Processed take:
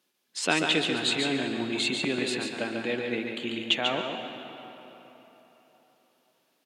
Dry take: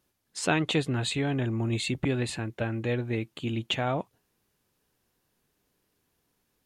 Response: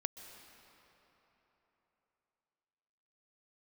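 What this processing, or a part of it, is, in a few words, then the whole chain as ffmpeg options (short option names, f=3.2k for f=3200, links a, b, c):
PA in a hall: -filter_complex "[0:a]highpass=f=190:w=0.5412,highpass=f=190:w=1.3066,equalizer=f=3.4k:t=o:w=1.6:g=7,aecho=1:1:142:0.562[a];[1:a]atrim=start_sample=2205[b];[a][b]afir=irnorm=-1:irlink=0"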